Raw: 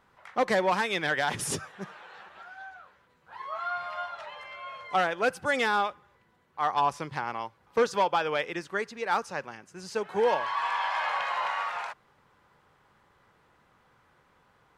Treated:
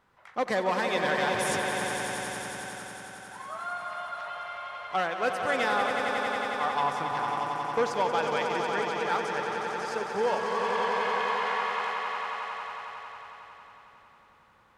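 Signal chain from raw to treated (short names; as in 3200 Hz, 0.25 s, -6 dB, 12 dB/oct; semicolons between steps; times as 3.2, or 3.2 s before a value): swelling echo 91 ms, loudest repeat 5, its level -8 dB; gain -3 dB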